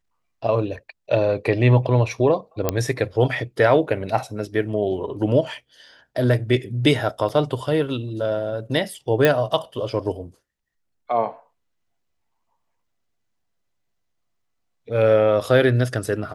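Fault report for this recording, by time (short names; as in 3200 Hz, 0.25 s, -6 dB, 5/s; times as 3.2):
2.69 pop -5 dBFS
7.29 gap 5 ms
9.25 pop -4 dBFS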